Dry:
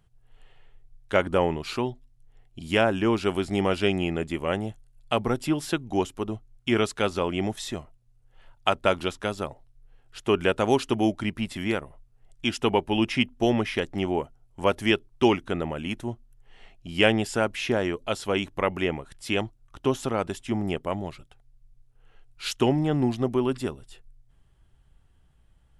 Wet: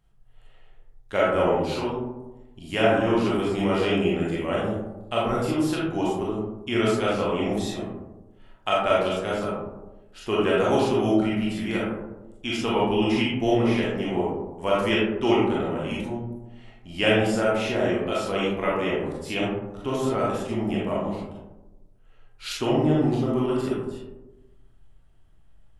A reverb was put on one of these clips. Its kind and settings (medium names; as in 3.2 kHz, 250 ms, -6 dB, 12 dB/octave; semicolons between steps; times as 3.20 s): algorithmic reverb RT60 1.1 s, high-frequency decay 0.3×, pre-delay 0 ms, DRR -6.5 dB; trim -6 dB